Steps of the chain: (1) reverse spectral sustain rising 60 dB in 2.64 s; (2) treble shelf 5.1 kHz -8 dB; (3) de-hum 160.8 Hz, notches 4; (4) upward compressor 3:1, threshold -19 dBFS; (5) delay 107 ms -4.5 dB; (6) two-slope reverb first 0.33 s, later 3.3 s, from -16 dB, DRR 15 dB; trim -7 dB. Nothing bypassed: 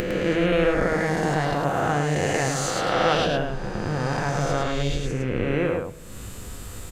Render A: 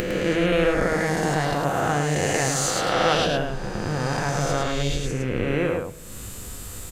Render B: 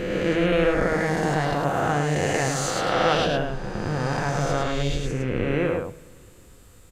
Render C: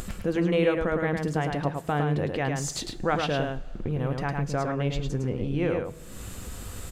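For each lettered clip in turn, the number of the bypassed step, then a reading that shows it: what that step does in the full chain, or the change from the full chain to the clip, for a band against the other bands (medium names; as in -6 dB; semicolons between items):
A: 2, 8 kHz band +5.0 dB; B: 4, momentary loudness spread change -10 LU; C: 1, 125 Hz band +4.0 dB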